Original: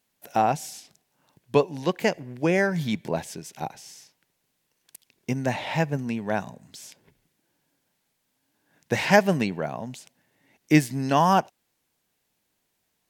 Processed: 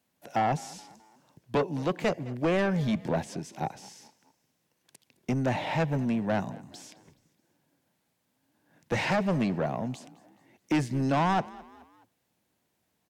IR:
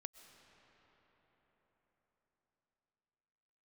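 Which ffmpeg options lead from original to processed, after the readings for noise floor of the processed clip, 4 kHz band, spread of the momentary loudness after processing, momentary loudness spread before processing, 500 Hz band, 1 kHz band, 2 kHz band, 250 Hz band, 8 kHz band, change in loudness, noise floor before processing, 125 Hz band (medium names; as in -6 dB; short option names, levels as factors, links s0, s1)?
-77 dBFS, -5.0 dB, 17 LU, 19 LU, -5.0 dB, -5.0 dB, -6.5 dB, -3.0 dB, -8.0 dB, -4.5 dB, -75 dBFS, -2.0 dB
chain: -filter_complex "[0:a]highpass=62,acrossover=split=9000[s0][s1];[s1]acompressor=threshold=0.00112:ratio=4:attack=1:release=60[s2];[s0][s2]amix=inputs=2:normalize=0,tiltshelf=f=1200:g=4,bandreject=f=420:w=12,acrossover=split=260[s3][s4];[s3]volume=21.1,asoftclip=hard,volume=0.0473[s5];[s4]alimiter=limit=0.282:level=0:latency=1:release=407[s6];[s5][s6]amix=inputs=2:normalize=0,asoftclip=type=tanh:threshold=0.0944,asplit=4[s7][s8][s9][s10];[s8]adelay=212,afreqshift=36,volume=0.0891[s11];[s9]adelay=424,afreqshift=72,volume=0.0403[s12];[s10]adelay=636,afreqshift=108,volume=0.018[s13];[s7][s11][s12][s13]amix=inputs=4:normalize=0"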